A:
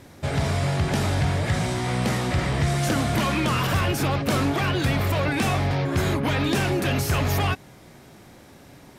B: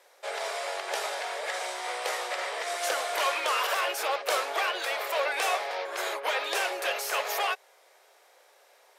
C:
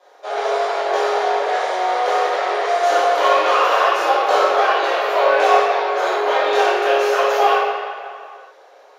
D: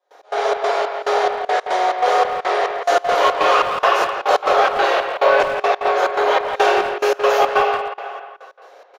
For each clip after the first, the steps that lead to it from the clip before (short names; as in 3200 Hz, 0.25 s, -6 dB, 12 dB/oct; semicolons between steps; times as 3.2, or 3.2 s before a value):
steep high-pass 450 Hz 48 dB/oct; upward expander 1.5:1, over -39 dBFS
reverb RT60 2.2 s, pre-delay 3 ms, DRR -12.5 dB; gain -8 dB
in parallel at -10.5 dB: soft clip -14.5 dBFS, distortion -12 dB; on the sum: step gate ".x.xx.xx..xx." 141 bpm -24 dB; speakerphone echo 0.17 s, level -6 dB